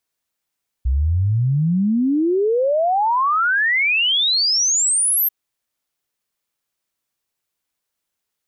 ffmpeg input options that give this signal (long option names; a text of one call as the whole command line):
ffmpeg -f lavfi -i "aevalsrc='0.188*clip(min(t,4.44-t)/0.01,0,1)*sin(2*PI*61*4.44/log(13000/61)*(exp(log(13000/61)*t/4.44)-1))':duration=4.44:sample_rate=44100" out.wav